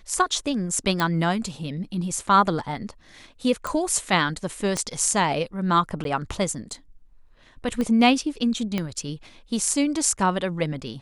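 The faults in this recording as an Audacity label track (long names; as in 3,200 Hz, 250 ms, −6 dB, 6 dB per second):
1.000000	1.000000	click −10 dBFS
3.670000	3.670000	click −14 dBFS
4.770000	4.770000	click −13 dBFS
6.040000	6.050000	drop-out 12 ms
7.810000	7.810000	click −15 dBFS
8.780000	8.780000	click −12 dBFS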